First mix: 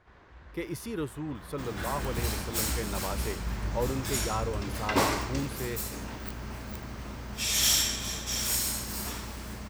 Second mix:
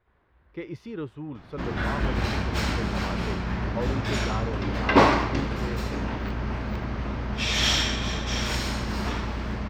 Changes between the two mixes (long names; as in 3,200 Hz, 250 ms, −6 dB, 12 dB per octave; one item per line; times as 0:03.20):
first sound −10.5 dB
second sound +10.0 dB
master: add high-frequency loss of the air 230 metres